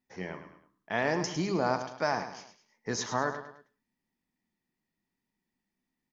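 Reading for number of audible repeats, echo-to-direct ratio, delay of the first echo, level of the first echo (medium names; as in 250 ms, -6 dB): 3, -9.5 dB, 105 ms, -10.0 dB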